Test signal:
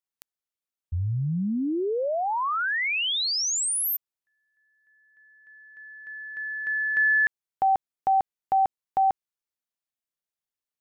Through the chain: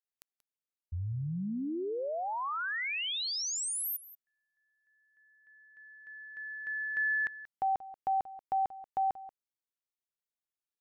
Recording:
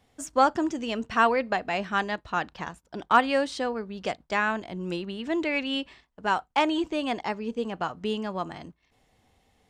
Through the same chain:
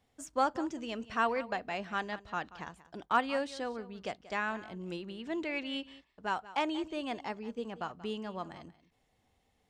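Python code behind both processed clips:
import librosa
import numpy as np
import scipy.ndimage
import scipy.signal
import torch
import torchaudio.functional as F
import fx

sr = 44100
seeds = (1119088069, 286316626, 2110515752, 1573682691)

y = x + 10.0 ** (-17.0 / 20.0) * np.pad(x, (int(183 * sr / 1000.0), 0))[:len(x)]
y = y * librosa.db_to_amplitude(-8.5)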